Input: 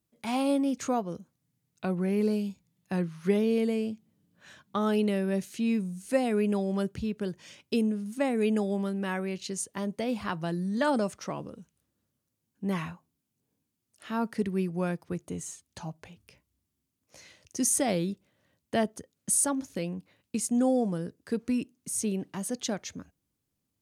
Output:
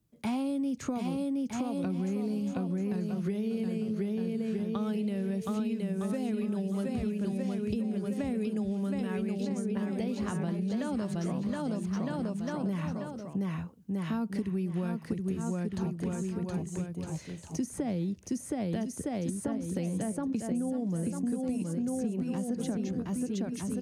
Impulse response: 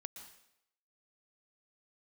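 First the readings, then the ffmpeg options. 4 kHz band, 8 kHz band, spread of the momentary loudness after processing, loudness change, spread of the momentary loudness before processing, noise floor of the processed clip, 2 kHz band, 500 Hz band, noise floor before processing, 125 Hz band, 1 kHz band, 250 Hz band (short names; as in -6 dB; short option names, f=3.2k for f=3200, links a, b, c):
-7.0 dB, -12.0 dB, 3 LU, -3.0 dB, 12 LU, -45 dBFS, -7.0 dB, -5.0 dB, -82 dBFS, +2.5 dB, -6.5 dB, 0.0 dB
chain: -filter_complex "[0:a]asplit=2[a][b];[b]aecho=0:1:720|1260|1665|1969|2197:0.631|0.398|0.251|0.158|0.1[c];[a][c]amix=inputs=2:normalize=0,acrossover=split=240|2300[d][e][f];[d]acompressor=threshold=-33dB:ratio=4[g];[e]acompressor=threshold=-33dB:ratio=4[h];[f]acompressor=threshold=-43dB:ratio=4[i];[g][h][i]amix=inputs=3:normalize=0,lowshelf=f=320:g=11.5,acompressor=threshold=-29dB:ratio=6"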